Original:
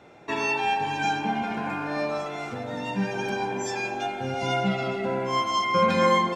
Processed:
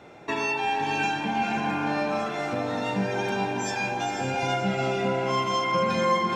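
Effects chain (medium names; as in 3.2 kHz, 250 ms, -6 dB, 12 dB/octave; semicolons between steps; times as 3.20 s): compression 2:1, threshold -30 dBFS, peak gain reduction 8 dB; on a send: echo that smears into a reverb 479 ms, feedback 43%, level -5 dB; on the sum: trim +3 dB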